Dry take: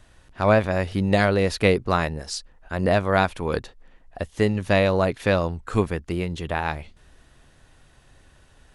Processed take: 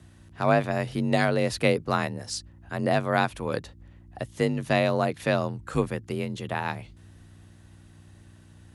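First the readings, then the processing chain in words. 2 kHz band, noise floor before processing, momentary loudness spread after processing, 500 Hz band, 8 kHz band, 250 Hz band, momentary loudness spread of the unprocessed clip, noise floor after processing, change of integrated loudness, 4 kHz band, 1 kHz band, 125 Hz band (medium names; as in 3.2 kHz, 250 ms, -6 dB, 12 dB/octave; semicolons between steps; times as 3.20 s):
-3.5 dB, -56 dBFS, 11 LU, -4.0 dB, -1.0 dB, -3.5 dB, 12 LU, -52 dBFS, -4.0 dB, -3.0 dB, -2.5 dB, -4.0 dB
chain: treble shelf 8.6 kHz +7 dB; hum 60 Hz, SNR 24 dB; frequency shift +38 Hz; trim -4 dB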